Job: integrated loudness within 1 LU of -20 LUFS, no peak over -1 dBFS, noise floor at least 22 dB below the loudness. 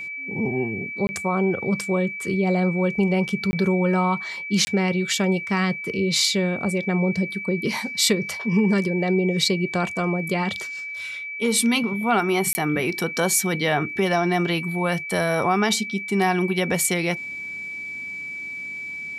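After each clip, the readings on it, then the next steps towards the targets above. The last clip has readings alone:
dropouts 4; longest dropout 20 ms; steady tone 2300 Hz; tone level -30 dBFS; loudness -22.5 LUFS; peak -6.5 dBFS; loudness target -20.0 LUFS
-> interpolate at 1.07/3.51/4.65/12.53, 20 ms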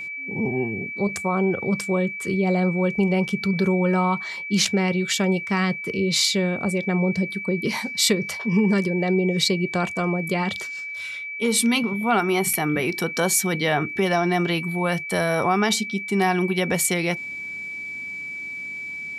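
dropouts 0; steady tone 2300 Hz; tone level -30 dBFS
-> notch 2300 Hz, Q 30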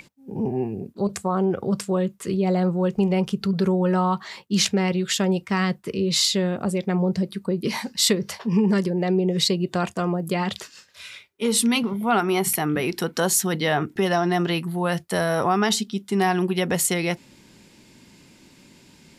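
steady tone none; loudness -23.0 LUFS; peak -6.0 dBFS; loudness target -20.0 LUFS
-> gain +3 dB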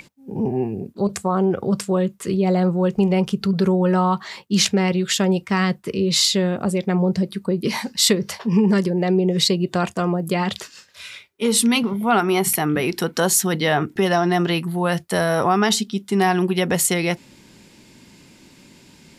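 loudness -20.0 LUFS; peak -3.0 dBFS; noise floor -50 dBFS

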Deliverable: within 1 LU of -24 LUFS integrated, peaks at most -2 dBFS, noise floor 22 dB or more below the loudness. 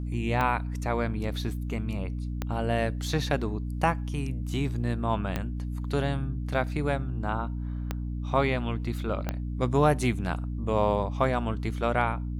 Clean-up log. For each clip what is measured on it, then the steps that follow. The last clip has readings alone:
clicks 5; hum 60 Hz; harmonics up to 300 Hz; hum level -30 dBFS; loudness -29.0 LUFS; peak -10.0 dBFS; loudness target -24.0 LUFS
-> de-click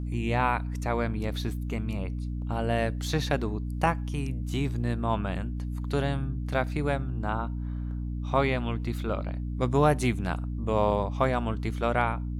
clicks 0; hum 60 Hz; harmonics up to 300 Hz; hum level -30 dBFS
-> de-hum 60 Hz, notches 5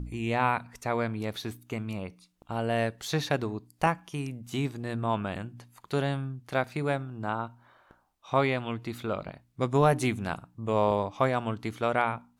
hum none; loudness -30.0 LUFS; peak -10.5 dBFS; loudness target -24.0 LUFS
-> gain +6 dB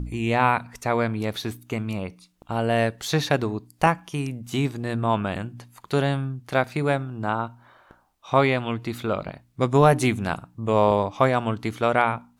loudness -24.0 LUFS; peak -4.5 dBFS; noise floor -62 dBFS

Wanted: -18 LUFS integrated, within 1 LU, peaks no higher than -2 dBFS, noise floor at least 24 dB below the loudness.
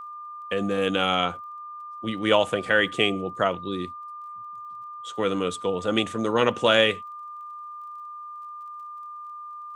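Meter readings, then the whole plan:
ticks 22/s; steady tone 1200 Hz; tone level -36 dBFS; loudness -24.0 LUFS; peak -5.5 dBFS; loudness target -18.0 LUFS
-> de-click; notch 1200 Hz, Q 30; gain +6 dB; limiter -2 dBFS

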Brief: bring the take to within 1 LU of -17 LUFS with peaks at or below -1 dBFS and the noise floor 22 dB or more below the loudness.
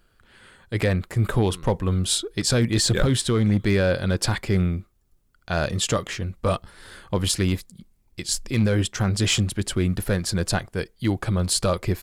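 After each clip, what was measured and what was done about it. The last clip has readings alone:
clipped 0.3%; flat tops at -12.5 dBFS; loudness -23.5 LUFS; peak -12.5 dBFS; loudness target -17.0 LUFS
-> clip repair -12.5 dBFS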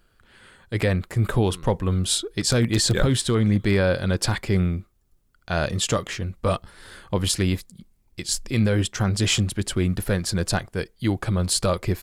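clipped 0.0%; loudness -23.5 LUFS; peak -5.5 dBFS; loudness target -17.0 LUFS
-> gain +6.5 dB; limiter -1 dBFS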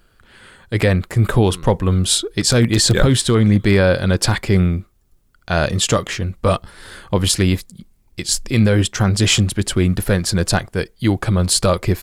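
loudness -17.0 LUFS; peak -1.0 dBFS; noise floor -57 dBFS

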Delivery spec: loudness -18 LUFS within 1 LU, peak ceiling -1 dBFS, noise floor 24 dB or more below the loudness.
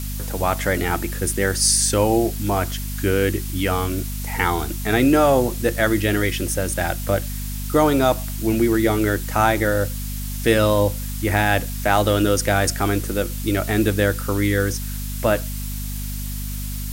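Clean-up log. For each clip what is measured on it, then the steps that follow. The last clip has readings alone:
hum 50 Hz; harmonics up to 250 Hz; hum level -26 dBFS; noise floor -28 dBFS; noise floor target -45 dBFS; loudness -20.5 LUFS; peak -2.5 dBFS; loudness target -18.0 LUFS
-> notches 50/100/150/200/250 Hz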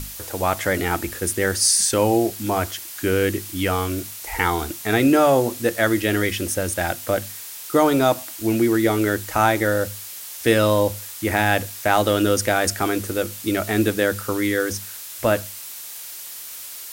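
hum none; noise floor -36 dBFS; noise floor target -45 dBFS
-> denoiser 9 dB, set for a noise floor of -36 dBFS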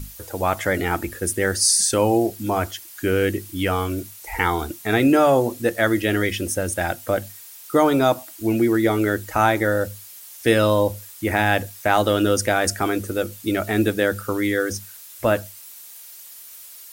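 noise floor -42 dBFS; noise floor target -45 dBFS
-> denoiser 6 dB, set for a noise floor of -42 dBFS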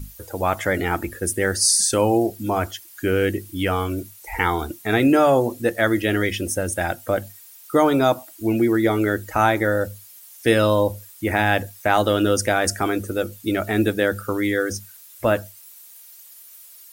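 noise floor -46 dBFS; loudness -21.0 LUFS; peak -3.0 dBFS; loudness target -18.0 LUFS
-> gain +3 dB; limiter -1 dBFS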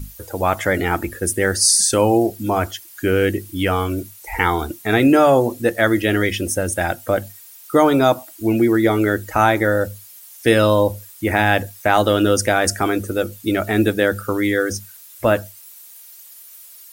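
loudness -18.0 LUFS; peak -1.0 dBFS; noise floor -43 dBFS

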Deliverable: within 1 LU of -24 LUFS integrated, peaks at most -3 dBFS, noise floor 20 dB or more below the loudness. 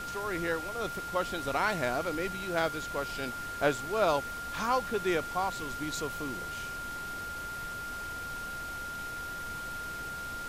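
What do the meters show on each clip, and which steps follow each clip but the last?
steady tone 1400 Hz; tone level -37 dBFS; noise floor -39 dBFS; noise floor target -54 dBFS; loudness -33.5 LUFS; peak -14.5 dBFS; loudness target -24.0 LUFS
-> notch 1400 Hz, Q 30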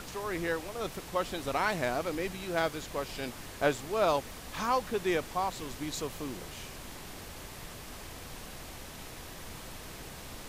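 steady tone none; noise floor -46 dBFS; noise floor target -55 dBFS
-> noise print and reduce 9 dB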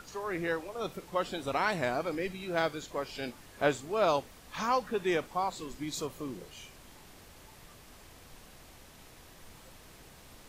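noise floor -54 dBFS; loudness -33.0 LUFS; peak -14.5 dBFS; loudness target -24.0 LUFS
-> gain +9 dB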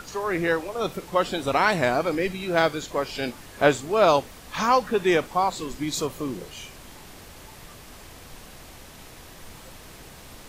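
loudness -24.0 LUFS; peak -5.5 dBFS; noise floor -45 dBFS

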